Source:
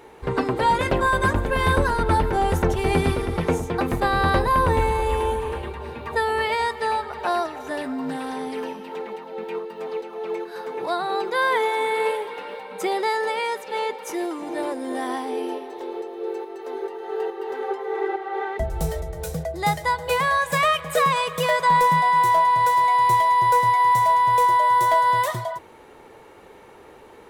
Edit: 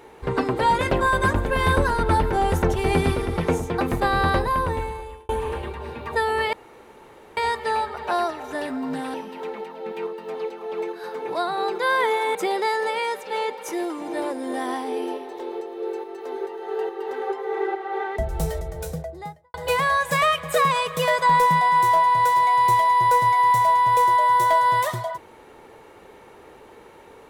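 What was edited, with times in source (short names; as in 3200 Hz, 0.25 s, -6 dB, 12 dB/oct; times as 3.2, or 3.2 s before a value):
4.19–5.29 fade out
6.53 insert room tone 0.84 s
8.3–8.66 cut
11.87–12.76 cut
19.12–19.95 studio fade out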